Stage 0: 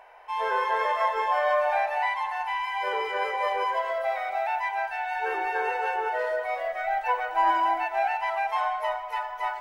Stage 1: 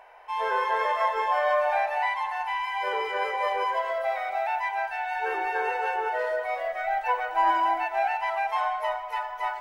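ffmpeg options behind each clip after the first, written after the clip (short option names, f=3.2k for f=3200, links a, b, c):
-af anull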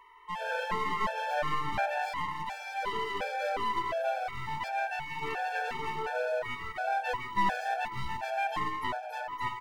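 -filter_complex "[0:a]aeval=exprs='clip(val(0),-1,0.0224)':c=same,asplit=2[a][b];[b]adelay=641.4,volume=-17dB,highshelf=f=4k:g=-14.4[c];[a][c]amix=inputs=2:normalize=0,afftfilt=real='re*gt(sin(2*PI*1.4*pts/sr)*(1-2*mod(floor(b*sr/1024/450),2)),0)':imag='im*gt(sin(2*PI*1.4*pts/sr)*(1-2*mod(floor(b*sr/1024/450),2)),0)':win_size=1024:overlap=0.75"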